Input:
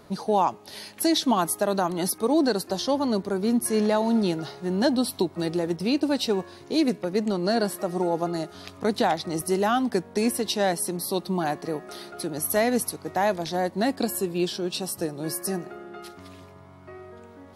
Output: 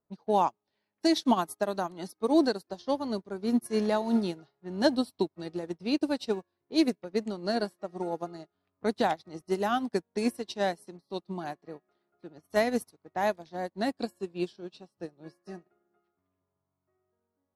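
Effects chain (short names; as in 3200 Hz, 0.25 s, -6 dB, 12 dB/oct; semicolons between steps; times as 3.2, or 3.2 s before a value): low-pass opened by the level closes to 1400 Hz, open at -19.5 dBFS; upward expander 2.5:1, over -42 dBFS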